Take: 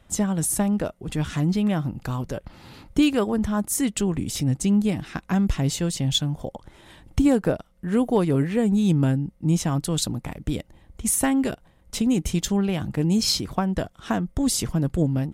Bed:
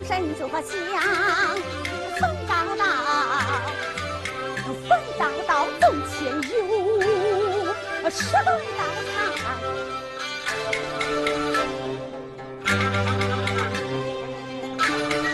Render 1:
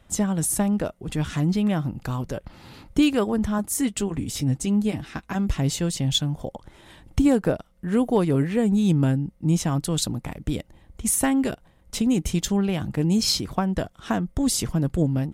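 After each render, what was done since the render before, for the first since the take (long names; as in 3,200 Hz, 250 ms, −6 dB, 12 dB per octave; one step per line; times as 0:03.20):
0:03.58–0:05.56: notch comb filter 180 Hz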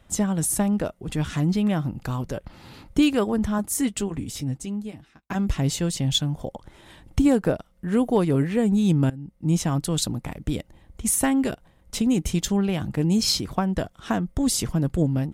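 0:03.86–0:05.30: fade out
0:09.10–0:09.55: fade in, from −21 dB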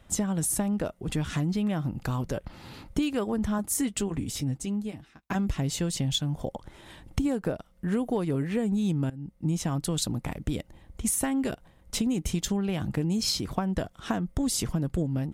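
downward compressor, threshold −24 dBFS, peak gain reduction 9.5 dB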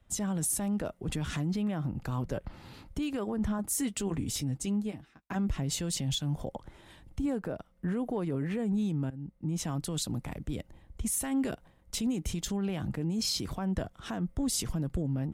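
brickwall limiter −24 dBFS, peak gain reduction 10.5 dB
multiband upward and downward expander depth 40%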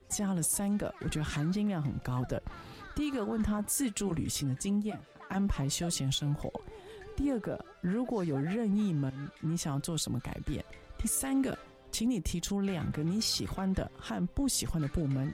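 mix in bed −28.5 dB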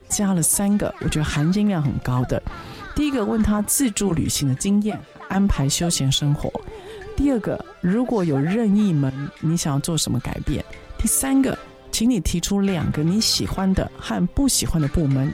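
level +12 dB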